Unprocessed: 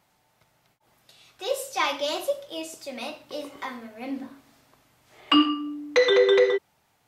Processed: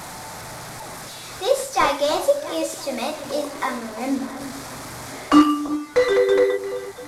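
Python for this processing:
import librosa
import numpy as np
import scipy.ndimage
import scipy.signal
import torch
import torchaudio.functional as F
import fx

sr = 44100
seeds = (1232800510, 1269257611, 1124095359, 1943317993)

y = fx.delta_mod(x, sr, bps=64000, step_db=-37.5)
y = fx.peak_eq(y, sr, hz=2900.0, db=-9.5, octaves=0.46)
y = fx.rider(y, sr, range_db=4, speed_s=0.5)
y = fx.peak_eq(y, sr, hz=1100.0, db=2.0, octaves=1.8)
y = fx.echo_alternate(y, sr, ms=338, hz=980.0, feedback_pct=56, wet_db=-11)
y = y * librosa.db_to_amplitude(4.5)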